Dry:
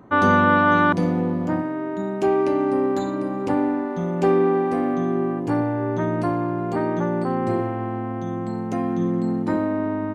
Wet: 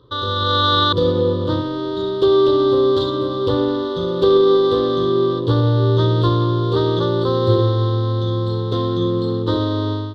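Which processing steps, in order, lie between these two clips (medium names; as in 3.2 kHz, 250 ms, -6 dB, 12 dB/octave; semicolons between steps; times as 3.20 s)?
median filter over 15 samples; peak limiter -13 dBFS, peak gain reduction 7 dB; FFT filter 120 Hz 0 dB, 200 Hz -23 dB, 490 Hz 0 dB, 730 Hz -27 dB, 1.1 kHz -4 dB, 2.4 kHz -26 dB, 3.5 kHz +14 dB, 6.6 kHz -18 dB; level rider gain up to 10.5 dB; trim +4 dB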